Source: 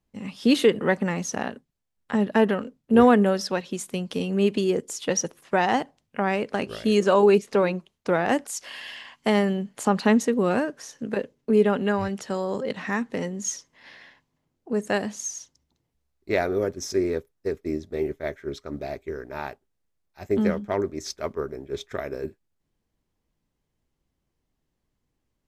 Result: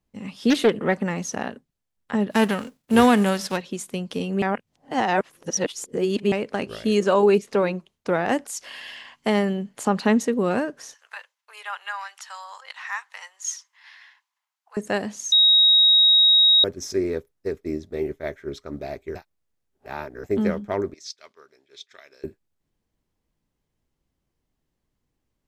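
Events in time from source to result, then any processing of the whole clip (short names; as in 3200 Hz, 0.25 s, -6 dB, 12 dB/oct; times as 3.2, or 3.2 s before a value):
0.5–0.97 Doppler distortion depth 0.31 ms
2.3–3.56 spectral whitening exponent 0.6
4.42–6.32 reverse
10.94–14.77 steep high-pass 890 Hz
15.32–16.64 bleep 3790 Hz -12 dBFS
19.15–20.24 reverse
20.94–22.24 band-pass 4300 Hz, Q 1.5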